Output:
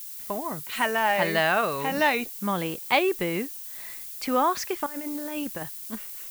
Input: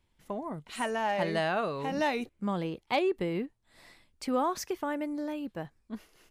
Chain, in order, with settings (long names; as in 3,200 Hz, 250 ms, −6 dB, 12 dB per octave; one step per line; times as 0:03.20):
parametric band 2,000 Hz +8.5 dB 2.5 octaves
0:04.86–0:05.63: compressor whose output falls as the input rises −35 dBFS, ratio −0.5
background noise violet −41 dBFS
level +2 dB